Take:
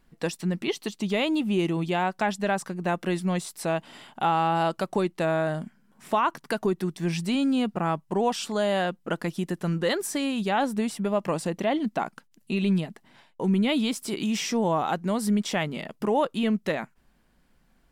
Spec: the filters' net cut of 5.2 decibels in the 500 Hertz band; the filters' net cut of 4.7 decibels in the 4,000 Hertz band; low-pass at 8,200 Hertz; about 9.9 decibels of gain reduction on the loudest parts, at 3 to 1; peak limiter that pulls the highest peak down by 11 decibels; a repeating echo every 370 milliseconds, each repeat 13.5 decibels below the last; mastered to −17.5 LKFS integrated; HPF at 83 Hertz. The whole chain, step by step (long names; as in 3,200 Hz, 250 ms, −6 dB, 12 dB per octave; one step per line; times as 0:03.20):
high-pass filter 83 Hz
low-pass filter 8,200 Hz
parametric band 500 Hz −7 dB
parametric band 4,000 Hz −6.5 dB
downward compressor 3 to 1, threshold −35 dBFS
brickwall limiter −32 dBFS
repeating echo 370 ms, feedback 21%, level −13.5 dB
level +23.5 dB